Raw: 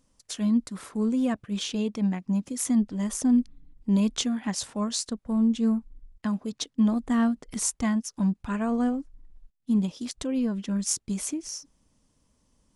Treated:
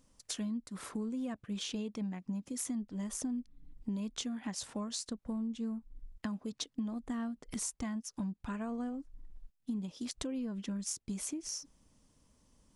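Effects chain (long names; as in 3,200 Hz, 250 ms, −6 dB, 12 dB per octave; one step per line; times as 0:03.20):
downward compressor 6 to 1, threshold −36 dBFS, peak gain reduction 17 dB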